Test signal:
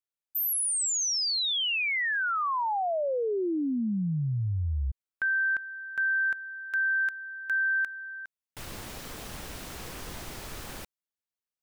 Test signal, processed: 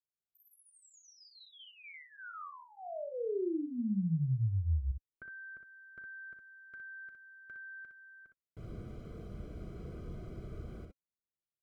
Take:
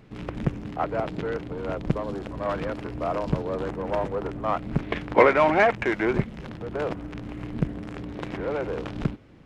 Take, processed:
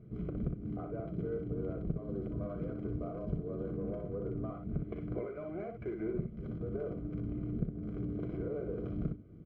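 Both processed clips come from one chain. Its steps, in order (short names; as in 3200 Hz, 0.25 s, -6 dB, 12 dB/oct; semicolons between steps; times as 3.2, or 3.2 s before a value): compressor 12:1, threshold -30 dBFS; running mean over 49 samples; notch comb 270 Hz; on a send: early reflections 37 ms -14.5 dB, 61 ms -5.5 dB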